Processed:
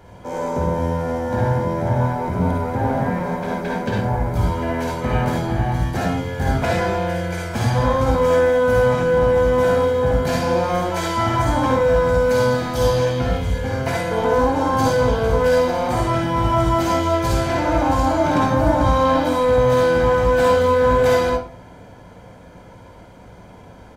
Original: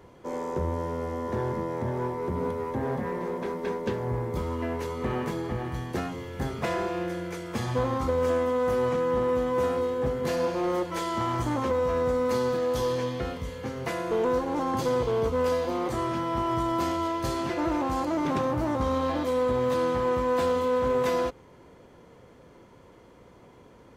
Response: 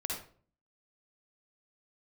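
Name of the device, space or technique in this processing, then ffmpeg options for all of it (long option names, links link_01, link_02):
microphone above a desk: -filter_complex "[0:a]aecho=1:1:1.3:0.5[link_01];[1:a]atrim=start_sample=2205[link_02];[link_01][link_02]afir=irnorm=-1:irlink=0,volume=7dB"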